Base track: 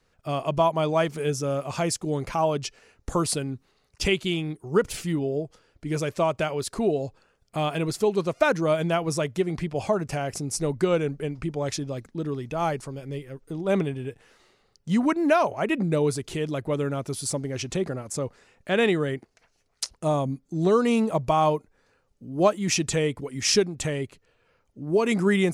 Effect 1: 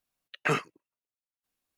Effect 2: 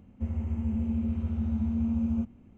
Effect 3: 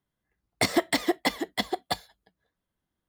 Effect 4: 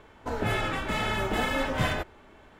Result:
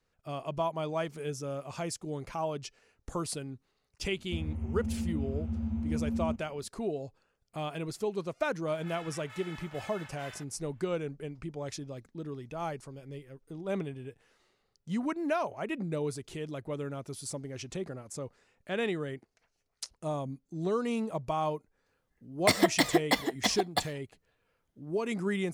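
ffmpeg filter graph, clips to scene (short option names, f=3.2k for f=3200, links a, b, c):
-filter_complex "[0:a]volume=-10dB[a];[4:a]highpass=1.1k[b];[2:a]atrim=end=2.57,asetpts=PTS-STARTPTS,volume=-4.5dB,afade=t=in:d=0.004:c=hsin,afade=t=out:st=2.566:d=0.004:c=hsin,adelay=4110[c];[b]atrim=end=2.59,asetpts=PTS-STARTPTS,volume=-16dB,afade=t=in:d=0.004:c=hsin,afade=t=out:st=2.586:d=0.004:c=hsin,adelay=8410[d];[3:a]atrim=end=3.08,asetpts=PTS-STARTPTS,volume=-0.5dB,afade=t=in:d=0.004:c=hsin,afade=t=out:st=3.076:d=0.004:c=hsin,adelay=21860[e];[a][c][d][e]amix=inputs=4:normalize=0"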